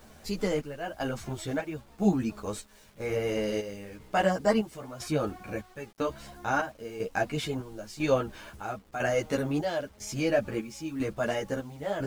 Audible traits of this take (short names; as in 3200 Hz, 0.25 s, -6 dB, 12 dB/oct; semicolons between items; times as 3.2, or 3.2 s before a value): chopped level 1 Hz, depth 65%, duty 60%; a quantiser's noise floor 10-bit, dither none; a shimmering, thickened sound